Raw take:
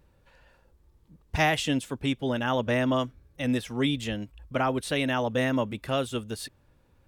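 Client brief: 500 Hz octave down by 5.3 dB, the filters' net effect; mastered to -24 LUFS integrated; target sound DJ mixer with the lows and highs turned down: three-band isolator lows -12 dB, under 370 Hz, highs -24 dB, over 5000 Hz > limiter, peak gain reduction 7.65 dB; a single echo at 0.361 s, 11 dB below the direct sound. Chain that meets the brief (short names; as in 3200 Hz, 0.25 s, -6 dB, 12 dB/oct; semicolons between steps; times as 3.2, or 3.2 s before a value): three-band isolator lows -12 dB, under 370 Hz, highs -24 dB, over 5000 Hz; bell 500 Hz -5 dB; echo 0.361 s -11 dB; gain +9.5 dB; limiter -10.5 dBFS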